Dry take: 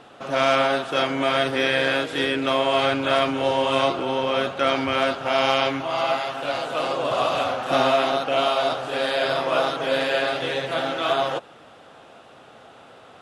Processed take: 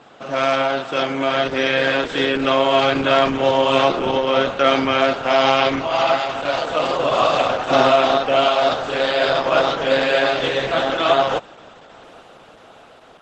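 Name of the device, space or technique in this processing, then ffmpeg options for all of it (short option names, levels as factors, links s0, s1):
video call: -af "highpass=100,dynaudnorm=f=740:g=5:m=2,volume=1.26" -ar 48000 -c:a libopus -b:a 12k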